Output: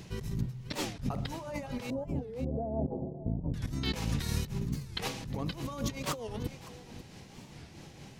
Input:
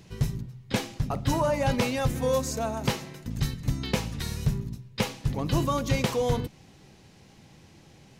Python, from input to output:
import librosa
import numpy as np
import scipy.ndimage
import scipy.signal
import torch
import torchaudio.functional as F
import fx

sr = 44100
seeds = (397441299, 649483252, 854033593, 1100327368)

y = fx.steep_lowpass(x, sr, hz=740.0, slope=48, at=(1.9, 3.56))
y = fx.over_compress(y, sr, threshold_db=-34.0, ratio=-1.0)
y = y + 10.0 ** (-15.0 / 20.0) * np.pad(y, (int(544 * sr / 1000.0), 0))[:len(y)]
y = y * (1.0 - 0.39 / 2.0 + 0.39 / 2.0 * np.cos(2.0 * np.pi * 4.6 * (np.arange(len(y)) / sr)))
y = fx.record_warp(y, sr, rpm=45.0, depth_cents=250.0)